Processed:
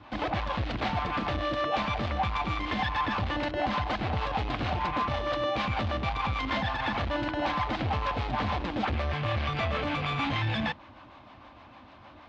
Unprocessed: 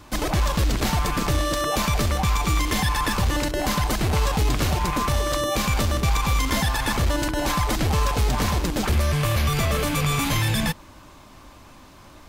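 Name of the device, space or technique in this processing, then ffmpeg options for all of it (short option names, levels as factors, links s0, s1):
guitar amplifier with harmonic tremolo: -filter_complex "[0:a]acrossover=split=410[s0][s1];[s0]aeval=exprs='val(0)*(1-0.5/2+0.5/2*cos(2*PI*6.5*n/s))':c=same[s2];[s1]aeval=exprs='val(0)*(1-0.5/2-0.5/2*cos(2*PI*6.5*n/s))':c=same[s3];[s2][s3]amix=inputs=2:normalize=0,asoftclip=type=tanh:threshold=0.0944,highpass=86,equalizer=f=160:t=q:w=4:g=-9,equalizer=f=400:t=q:w=4:g=-7,equalizer=f=750:t=q:w=4:g=5,lowpass=f=3600:w=0.5412,lowpass=f=3600:w=1.3066"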